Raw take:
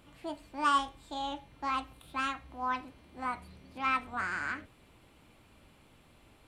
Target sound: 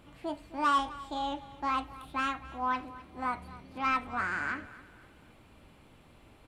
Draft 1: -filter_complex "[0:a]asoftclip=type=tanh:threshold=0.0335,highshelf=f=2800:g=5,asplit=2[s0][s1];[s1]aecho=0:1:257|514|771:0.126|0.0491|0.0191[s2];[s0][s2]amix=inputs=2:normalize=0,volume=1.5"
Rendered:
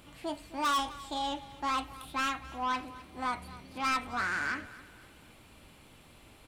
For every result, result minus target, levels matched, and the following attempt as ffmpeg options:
saturation: distortion +9 dB; 4 kHz band +5.5 dB
-filter_complex "[0:a]asoftclip=type=tanh:threshold=0.0841,highshelf=f=2800:g=5,asplit=2[s0][s1];[s1]aecho=0:1:257|514|771:0.126|0.0491|0.0191[s2];[s0][s2]amix=inputs=2:normalize=0,volume=1.5"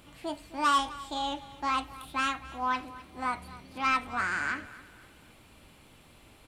4 kHz band +4.0 dB
-filter_complex "[0:a]asoftclip=type=tanh:threshold=0.0841,highshelf=f=2800:g=-5.5,asplit=2[s0][s1];[s1]aecho=0:1:257|514|771:0.126|0.0491|0.0191[s2];[s0][s2]amix=inputs=2:normalize=0,volume=1.5"

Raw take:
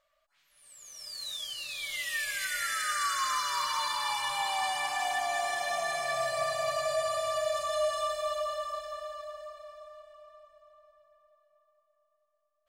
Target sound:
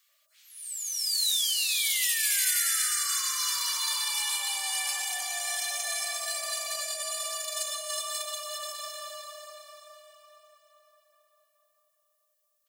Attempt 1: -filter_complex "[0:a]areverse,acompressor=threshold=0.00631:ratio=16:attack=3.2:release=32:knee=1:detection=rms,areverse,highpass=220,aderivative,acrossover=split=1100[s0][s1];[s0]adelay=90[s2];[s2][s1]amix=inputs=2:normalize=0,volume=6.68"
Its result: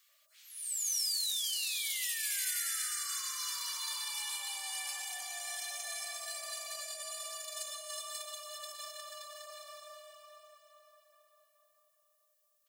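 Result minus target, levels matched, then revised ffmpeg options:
compression: peak gain reduction +9 dB
-filter_complex "[0:a]areverse,acompressor=threshold=0.0188:ratio=16:attack=3.2:release=32:knee=1:detection=rms,areverse,highpass=220,aderivative,acrossover=split=1100[s0][s1];[s0]adelay=90[s2];[s2][s1]amix=inputs=2:normalize=0,volume=6.68"

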